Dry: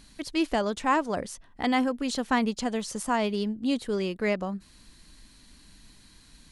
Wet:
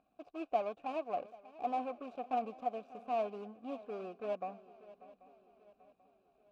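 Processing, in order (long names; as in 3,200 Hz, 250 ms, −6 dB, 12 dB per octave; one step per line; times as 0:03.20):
running median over 41 samples
formant filter a
feedback echo with a long and a short gap by turns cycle 787 ms, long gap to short 3 to 1, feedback 43%, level −18.5 dB
level +4.5 dB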